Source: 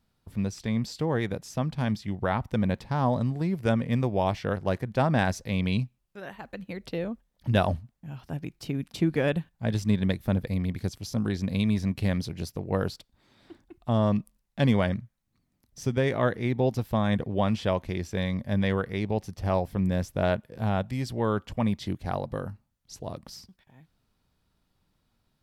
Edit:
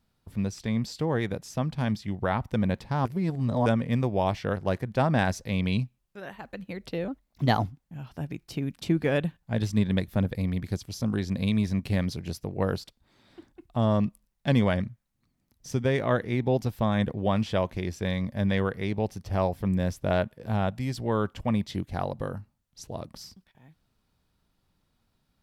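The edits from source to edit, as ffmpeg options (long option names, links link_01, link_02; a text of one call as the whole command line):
ffmpeg -i in.wav -filter_complex "[0:a]asplit=5[link_01][link_02][link_03][link_04][link_05];[link_01]atrim=end=3.052[link_06];[link_02]atrim=start=3.048:end=3.662,asetpts=PTS-STARTPTS,areverse[link_07];[link_03]atrim=start=3.658:end=7.084[link_08];[link_04]atrim=start=7.08:end=7.92,asetpts=PTS-STARTPTS,asetrate=51597,aresample=44100[link_09];[link_05]atrim=start=7.916[link_10];[link_06][link_07]acrossfade=duration=0.004:curve1=hsin:curve2=hsin[link_11];[link_11][link_08]acrossfade=duration=0.004:curve1=hsin:curve2=hsin[link_12];[link_12][link_09]acrossfade=duration=0.004:curve1=hsin:curve2=hsin[link_13];[link_13][link_10]acrossfade=duration=0.004:curve1=hsin:curve2=hsin" out.wav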